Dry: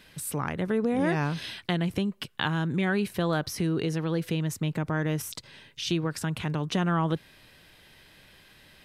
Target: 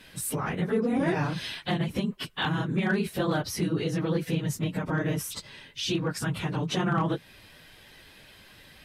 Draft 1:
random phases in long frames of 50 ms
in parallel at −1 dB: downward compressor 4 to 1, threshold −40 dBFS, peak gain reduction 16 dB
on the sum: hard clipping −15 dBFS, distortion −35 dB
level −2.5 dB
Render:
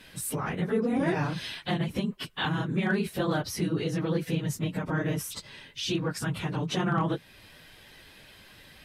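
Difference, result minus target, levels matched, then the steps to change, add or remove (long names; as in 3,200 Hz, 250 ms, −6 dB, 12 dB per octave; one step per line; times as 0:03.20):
downward compressor: peak gain reduction +4.5 dB
change: downward compressor 4 to 1, threshold −34 dBFS, peak gain reduction 11.5 dB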